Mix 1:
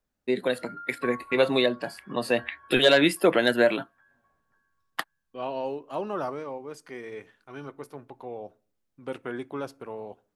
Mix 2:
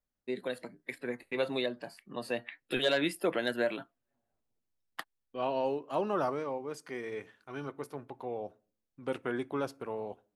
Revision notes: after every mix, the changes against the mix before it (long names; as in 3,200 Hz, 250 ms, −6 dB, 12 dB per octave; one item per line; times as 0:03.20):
first voice −10.0 dB
background: muted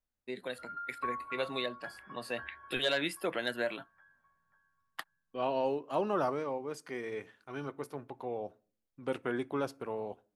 first voice: add parametric band 290 Hz −5.5 dB 2.6 octaves
background: unmuted